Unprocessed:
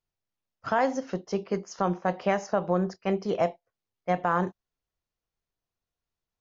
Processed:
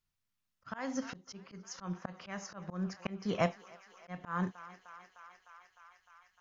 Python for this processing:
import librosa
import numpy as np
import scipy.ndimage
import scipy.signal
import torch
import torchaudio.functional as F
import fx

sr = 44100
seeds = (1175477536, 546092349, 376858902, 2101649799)

y = fx.band_shelf(x, sr, hz=520.0, db=-9.0, octaves=1.7)
y = fx.echo_thinned(y, sr, ms=304, feedback_pct=85, hz=510.0, wet_db=-23.5)
y = fx.auto_swell(y, sr, attack_ms=353.0)
y = y * 10.0 ** (2.5 / 20.0)